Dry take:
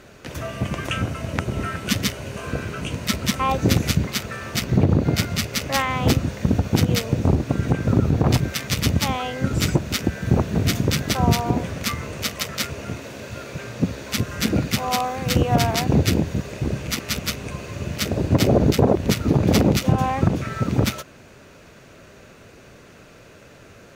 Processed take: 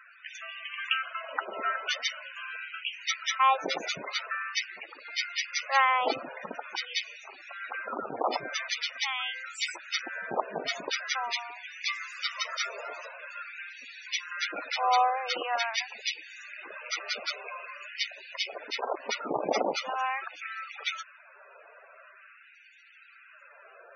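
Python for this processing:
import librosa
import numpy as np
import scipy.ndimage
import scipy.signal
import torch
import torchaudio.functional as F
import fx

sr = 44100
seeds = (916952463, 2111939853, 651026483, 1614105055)

y = fx.dmg_noise_band(x, sr, seeds[0], low_hz=930.0, high_hz=8200.0, level_db=-41.0, at=(11.85, 13.05), fade=0.02)
y = fx.filter_lfo_highpass(y, sr, shape='sine', hz=0.45, low_hz=730.0, high_hz=2200.0, q=1.1)
y = fx.spec_topn(y, sr, count=32)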